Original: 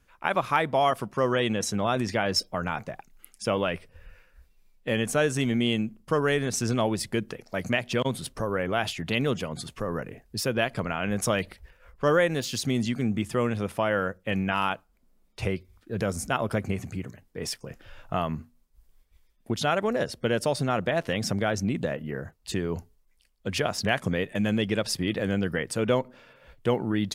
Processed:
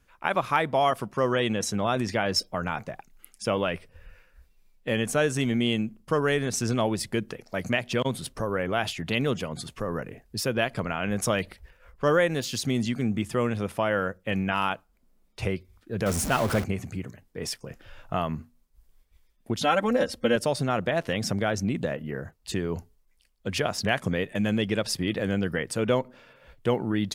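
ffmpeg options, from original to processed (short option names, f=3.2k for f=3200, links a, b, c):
-filter_complex "[0:a]asettb=1/sr,asplit=3[a][b][c];[a]atrim=end=16.064[d];[b]atrim=start=16.06:end=16.64,asetpts=PTS-STARTPTS,afade=t=in:d=0.004:c=qsin,afade=t=out:st=0.576:d=0.004:c=qsin,aeval=exprs='val(0)+0.5*0.0473*sgn(val(0))':c=same[e];[c]atrim=start=16.636[f];[d][e]acrossfade=d=0.004:c1=hsin:c2=qsin[g];[g][f]acrossfade=d=0.004:c1=qsin:c2=hsin,asettb=1/sr,asplit=3[h][i][j];[h]atrim=end=19.634[k];[i]atrim=start=19.63:end=20.36,asetpts=PTS-STARTPTS,afade=t=in:d=0.004:c=qsin,afade=t=out:st=0.726:d=0.004:c=qsin,aecho=1:1:3.8:0.84,atrim=end_sample=32193[l];[j]atrim=start=20.356[m];[k][l]acrossfade=d=0.004:c1=hsin:c2=qsin[n];[n][m]acrossfade=d=0.004:c1=qsin:c2=hsin"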